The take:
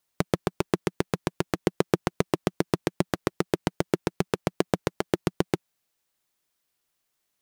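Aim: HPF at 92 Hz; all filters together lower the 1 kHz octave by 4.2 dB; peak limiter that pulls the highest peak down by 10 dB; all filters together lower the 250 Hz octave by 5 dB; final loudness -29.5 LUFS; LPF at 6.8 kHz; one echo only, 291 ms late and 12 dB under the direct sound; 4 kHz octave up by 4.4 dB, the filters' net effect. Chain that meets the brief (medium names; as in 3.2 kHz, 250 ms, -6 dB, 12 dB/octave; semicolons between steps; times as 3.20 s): high-pass 92 Hz; low-pass 6.8 kHz; peaking EQ 250 Hz -7.5 dB; peaking EQ 1 kHz -5.5 dB; peaking EQ 4 kHz +6.5 dB; peak limiter -13.5 dBFS; delay 291 ms -12 dB; trim +10 dB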